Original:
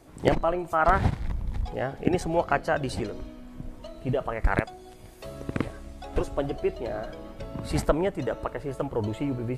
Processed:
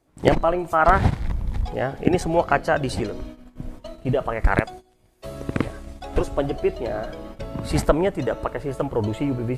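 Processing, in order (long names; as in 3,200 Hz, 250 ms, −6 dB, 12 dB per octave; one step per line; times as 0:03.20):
noise gate −41 dBFS, range −18 dB
level +5 dB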